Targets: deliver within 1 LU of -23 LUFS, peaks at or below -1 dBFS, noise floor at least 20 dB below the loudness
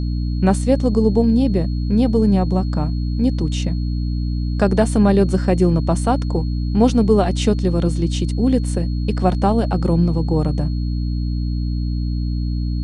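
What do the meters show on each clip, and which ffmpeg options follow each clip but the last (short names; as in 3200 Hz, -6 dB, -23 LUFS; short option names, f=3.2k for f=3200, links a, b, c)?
hum 60 Hz; harmonics up to 300 Hz; hum level -18 dBFS; steady tone 4300 Hz; tone level -43 dBFS; loudness -19.0 LUFS; peak -2.5 dBFS; loudness target -23.0 LUFS
-> -af "bandreject=f=60:t=h:w=4,bandreject=f=120:t=h:w=4,bandreject=f=180:t=h:w=4,bandreject=f=240:t=h:w=4,bandreject=f=300:t=h:w=4"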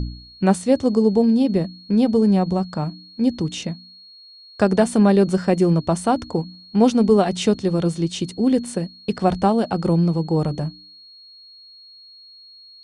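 hum none; steady tone 4300 Hz; tone level -43 dBFS
-> -af "bandreject=f=4.3k:w=30"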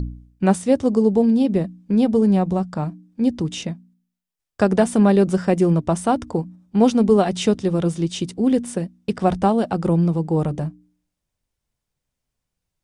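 steady tone none; loudness -19.5 LUFS; peak -4.0 dBFS; loudness target -23.0 LUFS
-> -af "volume=-3.5dB"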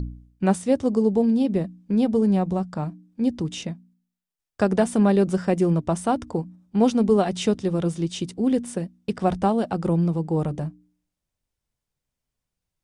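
loudness -23.0 LUFS; peak -7.5 dBFS; noise floor -86 dBFS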